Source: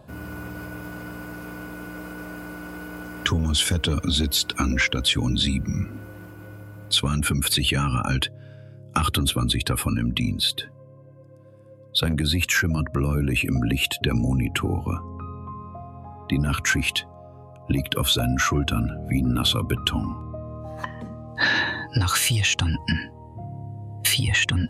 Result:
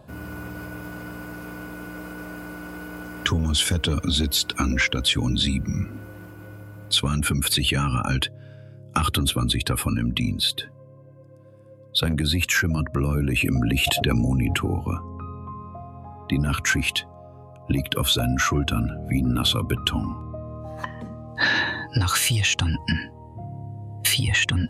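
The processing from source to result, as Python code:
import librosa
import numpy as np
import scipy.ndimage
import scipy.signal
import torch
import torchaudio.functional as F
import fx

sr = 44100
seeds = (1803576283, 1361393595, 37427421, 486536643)

y = fx.sustainer(x, sr, db_per_s=21.0, at=(13.37, 14.56))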